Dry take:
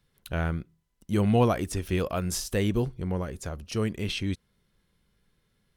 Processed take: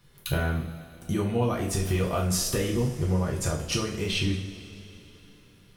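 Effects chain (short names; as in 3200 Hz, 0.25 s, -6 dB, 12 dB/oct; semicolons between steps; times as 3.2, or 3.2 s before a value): compressor 6:1, threshold -36 dBFS, peak gain reduction 18 dB; two-slope reverb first 0.45 s, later 3.5 s, from -18 dB, DRR -3 dB; gain +8 dB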